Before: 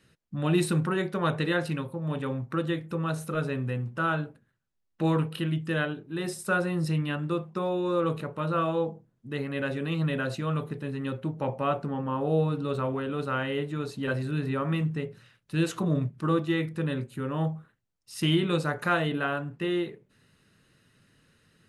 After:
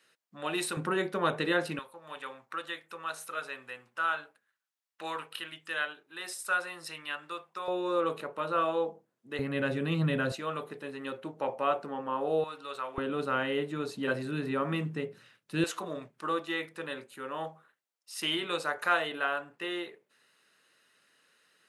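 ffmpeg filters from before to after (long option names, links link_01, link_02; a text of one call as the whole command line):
ffmpeg -i in.wav -af "asetnsamples=nb_out_samples=441:pad=0,asendcmd='0.77 highpass f 280;1.79 highpass f 990;7.68 highpass f 420;9.39 highpass f 110;10.32 highpass f 420;12.44 highpass f 960;12.98 highpass f 230;15.64 highpass f 580',highpass=590" out.wav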